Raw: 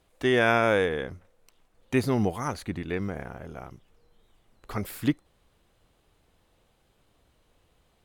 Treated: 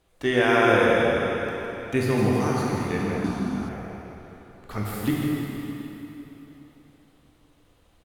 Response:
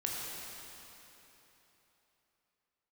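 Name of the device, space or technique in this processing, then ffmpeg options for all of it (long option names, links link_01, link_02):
cave: -filter_complex "[0:a]aecho=1:1:160:0.398[link_01];[1:a]atrim=start_sample=2205[link_02];[link_01][link_02]afir=irnorm=-1:irlink=0,asettb=1/sr,asplit=3[link_03][link_04][link_05];[link_03]atrim=end=3.244[link_06];[link_04]atrim=start=3.24:end=3.69,asetpts=PTS-STARTPTS,afade=type=in:duration=0.004:curve=qsin,afade=type=out:start_time=0.446:duration=0.004:curve=qsin,equalizer=frequency=125:width_type=o:width=1:gain=-4,equalizer=frequency=250:width_type=o:width=1:gain=12,equalizer=frequency=500:width_type=o:width=1:gain=-11,equalizer=frequency=1000:width_type=o:width=1:gain=5,equalizer=frequency=2000:width_type=o:width=1:gain=-6,equalizer=frequency=4000:width_type=o:width=1:gain=6,equalizer=frequency=8000:width_type=o:width=1:gain=6[link_07];[link_05]atrim=start=3.686[link_08];[link_06][link_07]acrossfade=duration=0.004:curve1=hsin:curve2=qsin[link_09];[link_09][link_08]acrossfade=duration=0.004:curve1=qsin:curve2=hsin"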